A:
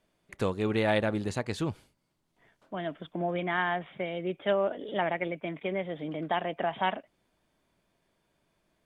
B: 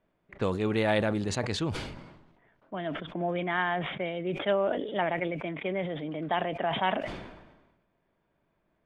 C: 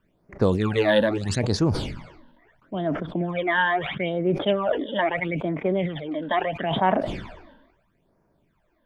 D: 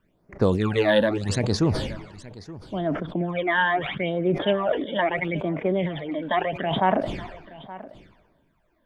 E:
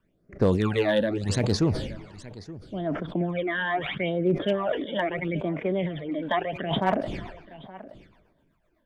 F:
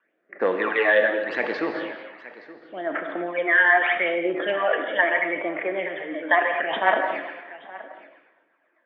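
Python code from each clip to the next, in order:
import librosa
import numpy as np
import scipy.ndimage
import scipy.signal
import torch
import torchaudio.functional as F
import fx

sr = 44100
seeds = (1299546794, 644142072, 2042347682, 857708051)

y1 = fx.env_lowpass(x, sr, base_hz=2000.0, full_db=-24.0)
y1 = fx.sustainer(y1, sr, db_per_s=50.0)
y2 = fx.phaser_stages(y1, sr, stages=12, low_hz=120.0, high_hz=3300.0, hz=0.76, feedback_pct=35)
y2 = y2 * 10.0 ** (8.0 / 20.0)
y3 = y2 + 10.0 ** (-18.0 / 20.0) * np.pad(y2, (int(873 * sr / 1000.0), 0))[:len(y2)]
y4 = fx.rotary_switch(y3, sr, hz=1.2, then_hz=8.0, switch_at_s=6.05)
y4 = np.clip(10.0 ** (14.0 / 20.0) * y4, -1.0, 1.0) / 10.0 ** (14.0 / 20.0)
y5 = fx.cabinet(y4, sr, low_hz=400.0, low_slope=24, high_hz=2500.0, hz=(410.0, 610.0, 1000.0, 1800.0), db=(-9, -5, -4, 7))
y5 = fx.rev_gated(y5, sr, seeds[0], gate_ms=260, shape='flat', drr_db=4.5)
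y5 = y5 * 10.0 ** (7.5 / 20.0)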